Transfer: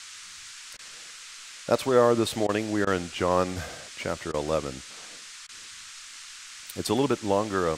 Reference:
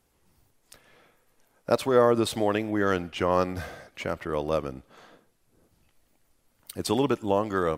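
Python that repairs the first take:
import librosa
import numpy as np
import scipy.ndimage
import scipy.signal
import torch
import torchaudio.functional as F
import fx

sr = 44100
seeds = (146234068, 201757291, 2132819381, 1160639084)

y = fx.fix_interpolate(x, sr, at_s=(0.77, 2.47, 2.85, 4.32, 5.47), length_ms=18.0)
y = fx.noise_reduce(y, sr, print_start_s=5.16, print_end_s=5.66, reduce_db=24.0)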